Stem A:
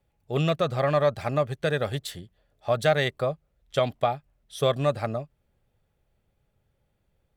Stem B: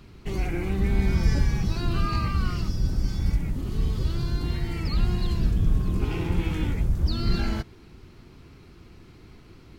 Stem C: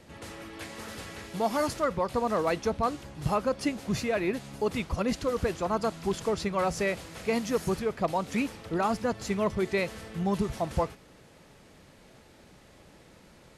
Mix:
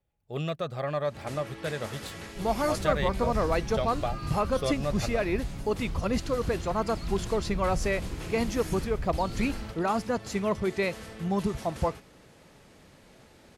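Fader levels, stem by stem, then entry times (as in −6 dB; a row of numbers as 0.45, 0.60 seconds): −7.5, −11.0, 0.0 decibels; 0.00, 2.10, 1.05 seconds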